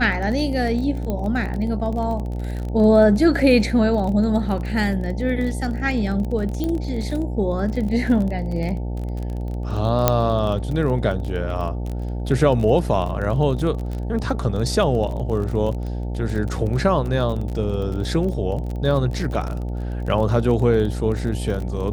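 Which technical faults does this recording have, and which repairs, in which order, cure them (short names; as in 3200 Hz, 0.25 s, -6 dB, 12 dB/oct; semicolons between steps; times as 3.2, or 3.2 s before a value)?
buzz 60 Hz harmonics 15 -26 dBFS
crackle 26/s -27 dBFS
1.1 pop -14 dBFS
6.64 pop -13 dBFS
10.08 pop 0 dBFS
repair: de-click; de-hum 60 Hz, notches 15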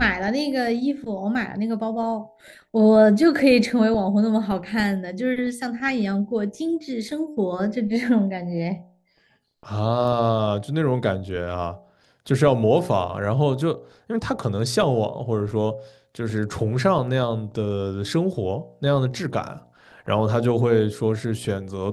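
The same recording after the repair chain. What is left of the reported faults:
10.08 pop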